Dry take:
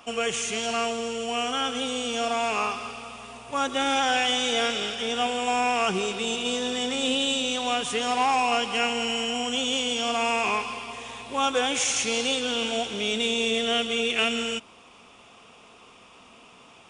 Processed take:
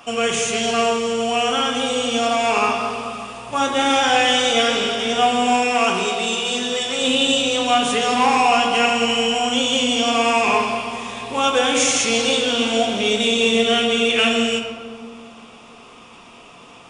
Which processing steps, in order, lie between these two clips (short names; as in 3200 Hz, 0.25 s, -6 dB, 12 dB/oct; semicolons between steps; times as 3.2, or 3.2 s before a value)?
5.56–7.02 low shelf 450 Hz -8 dB; reverb RT60 2.2 s, pre-delay 6 ms, DRR 1 dB; gain +5 dB